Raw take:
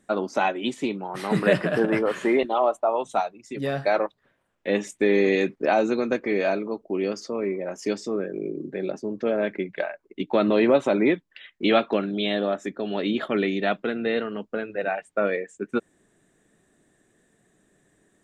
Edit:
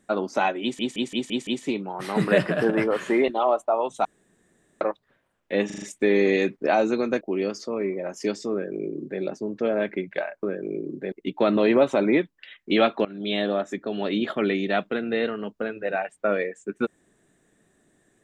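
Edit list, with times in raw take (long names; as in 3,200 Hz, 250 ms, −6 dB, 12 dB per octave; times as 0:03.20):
0:00.62: stutter 0.17 s, 6 plays
0:03.20–0:03.96: fill with room tone
0:04.81: stutter 0.04 s, 5 plays
0:06.20–0:06.83: remove
0:08.14–0:08.83: duplicate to 0:10.05
0:11.98–0:12.27: fade in, from −21 dB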